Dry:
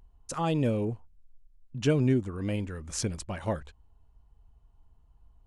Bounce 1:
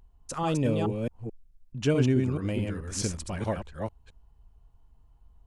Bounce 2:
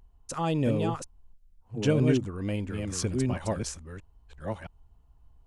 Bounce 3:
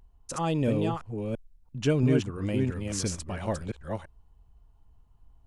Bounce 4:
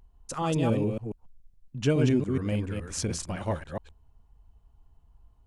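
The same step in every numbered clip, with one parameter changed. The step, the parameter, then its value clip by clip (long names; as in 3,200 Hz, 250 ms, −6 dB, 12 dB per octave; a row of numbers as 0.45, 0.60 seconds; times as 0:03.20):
delay that plays each chunk backwards, delay time: 216, 667, 338, 140 milliseconds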